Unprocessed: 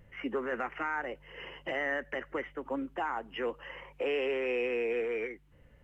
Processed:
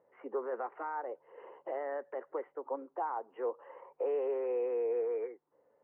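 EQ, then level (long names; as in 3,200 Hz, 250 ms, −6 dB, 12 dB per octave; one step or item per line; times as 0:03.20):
Chebyshev band-pass filter 420–1,000 Hz, order 2
0.0 dB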